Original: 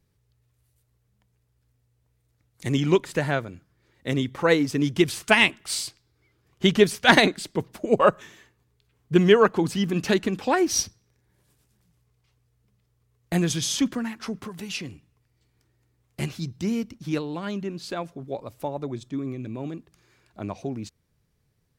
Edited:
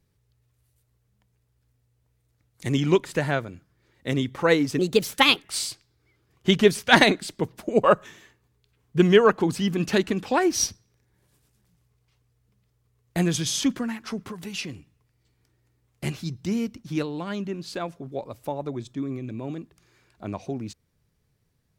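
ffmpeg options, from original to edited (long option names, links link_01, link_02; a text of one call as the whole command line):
ffmpeg -i in.wav -filter_complex "[0:a]asplit=3[link_01][link_02][link_03];[link_01]atrim=end=4.794[link_04];[link_02]atrim=start=4.79:end=5.59,asetpts=PTS-STARTPTS,asetrate=55125,aresample=44100[link_05];[link_03]atrim=start=5.586[link_06];[link_04][link_05]acrossfade=duration=0.004:curve1=hsin:curve2=hsin[link_07];[link_07][link_06]acrossfade=duration=0.004:curve1=hsin:curve2=hsin" out.wav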